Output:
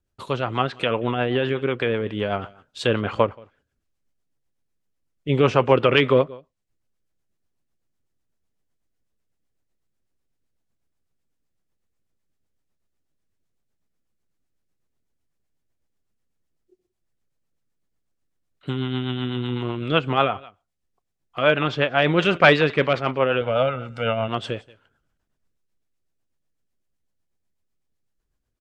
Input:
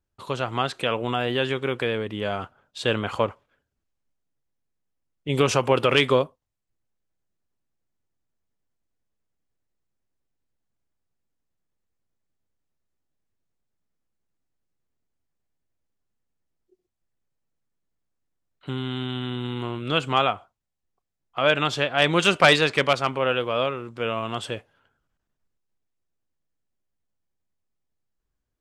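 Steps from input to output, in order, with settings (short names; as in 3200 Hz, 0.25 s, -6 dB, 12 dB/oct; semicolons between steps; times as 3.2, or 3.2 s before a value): 23.41–24.28 comb 1.4 ms, depth 75%; echo 0.179 s -23 dB; rotary speaker horn 8 Hz; treble ducked by the level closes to 2700 Hz, closed at -24.5 dBFS; gain +5 dB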